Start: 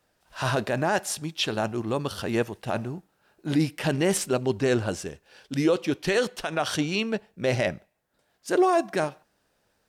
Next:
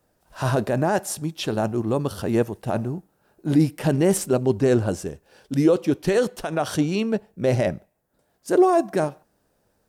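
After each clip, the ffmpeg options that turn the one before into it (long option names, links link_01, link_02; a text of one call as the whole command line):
ffmpeg -i in.wav -af "equalizer=frequency=2900:width_type=o:width=2.8:gain=-11,volume=6dB" out.wav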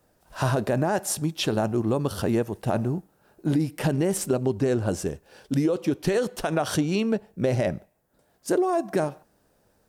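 ffmpeg -i in.wav -af "acompressor=threshold=-22dB:ratio=10,volume=2.5dB" out.wav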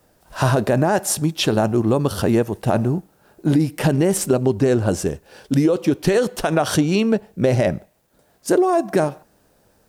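ffmpeg -i in.wav -af "acrusher=bits=11:mix=0:aa=0.000001,volume=6.5dB" out.wav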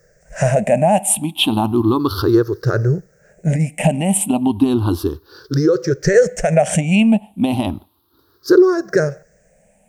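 ffmpeg -i in.wav -af "afftfilt=real='re*pow(10,24/40*sin(2*PI*(0.55*log(max(b,1)*sr/1024/100)/log(2)-(0.33)*(pts-256)/sr)))':imag='im*pow(10,24/40*sin(2*PI*(0.55*log(max(b,1)*sr/1024/100)/log(2)-(0.33)*(pts-256)/sr)))':win_size=1024:overlap=0.75,volume=-3.5dB" out.wav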